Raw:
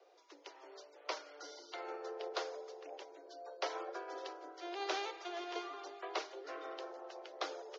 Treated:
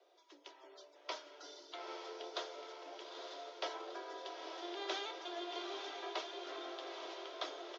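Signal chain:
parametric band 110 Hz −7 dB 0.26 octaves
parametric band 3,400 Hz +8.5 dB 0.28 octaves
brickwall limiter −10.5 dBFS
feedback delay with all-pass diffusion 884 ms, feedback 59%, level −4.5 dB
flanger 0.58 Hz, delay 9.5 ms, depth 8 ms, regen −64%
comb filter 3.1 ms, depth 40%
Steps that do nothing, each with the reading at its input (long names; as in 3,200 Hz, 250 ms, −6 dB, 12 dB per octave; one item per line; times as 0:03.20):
parametric band 110 Hz: nothing at its input below 270 Hz
brickwall limiter −10.5 dBFS: peak of its input −21.0 dBFS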